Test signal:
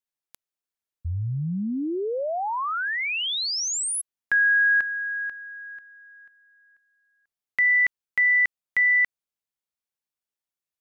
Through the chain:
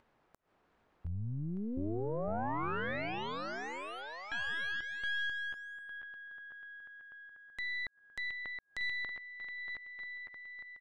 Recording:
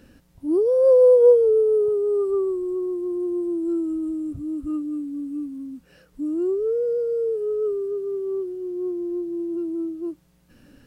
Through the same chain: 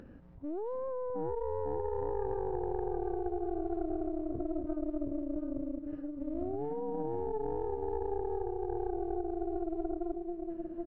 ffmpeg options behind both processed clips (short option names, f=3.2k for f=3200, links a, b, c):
-af "lowpass=1.2k,acompressor=threshold=-30dB:ratio=16:attack=0.51:release=101:knee=6:detection=peak,aecho=1:1:720|1224|1577|1824|1997:0.631|0.398|0.251|0.158|0.1,acompressor=mode=upward:threshold=-40dB:ratio=2.5:attack=6.5:release=113:knee=2.83:detection=peak,aeval=exprs='0.126*(cos(1*acos(clip(val(0)/0.126,-1,1)))-cos(1*PI/2))+0.0447*(cos(4*acos(clip(val(0)/0.126,-1,1)))-cos(4*PI/2))+0.00251*(cos(5*acos(clip(val(0)/0.126,-1,1)))-cos(5*PI/2))+0.00447*(cos(6*acos(clip(val(0)/0.126,-1,1)))-cos(6*PI/2))':c=same,volume=-6dB"